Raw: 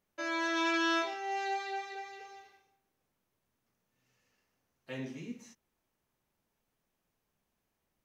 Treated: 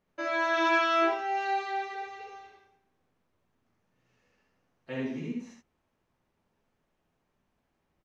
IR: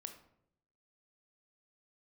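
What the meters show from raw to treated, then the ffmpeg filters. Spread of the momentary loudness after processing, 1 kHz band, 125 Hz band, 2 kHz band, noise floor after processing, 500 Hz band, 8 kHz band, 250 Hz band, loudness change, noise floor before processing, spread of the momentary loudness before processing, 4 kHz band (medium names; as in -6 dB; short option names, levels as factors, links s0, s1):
16 LU, +7.0 dB, +5.0 dB, +4.5 dB, -78 dBFS, +8.0 dB, -3.5 dB, +2.5 dB, +5.0 dB, -83 dBFS, 18 LU, +0.5 dB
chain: -af "aemphasis=mode=reproduction:type=75fm,aecho=1:1:65|77:0.631|0.562,volume=1.58"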